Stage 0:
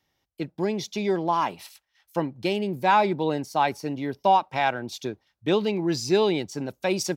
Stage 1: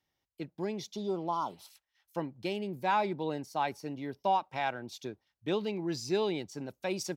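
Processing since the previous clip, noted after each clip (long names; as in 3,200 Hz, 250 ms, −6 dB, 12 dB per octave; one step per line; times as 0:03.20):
healed spectral selection 0:00.98–0:01.67, 1,500–3,000 Hz after
level −9 dB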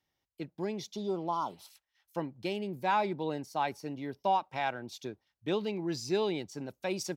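no processing that can be heard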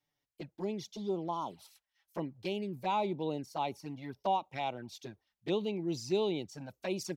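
flanger swept by the level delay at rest 6.9 ms, full sweep at −30 dBFS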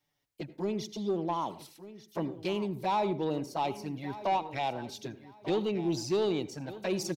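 soft clipping −27 dBFS, distortion −16 dB
repeating echo 1,193 ms, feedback 22%, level −15.5 dB
convolution reverb RT60 0.35 s, pre-delay 72 ms, DRR 15.5 dB
level +5 dB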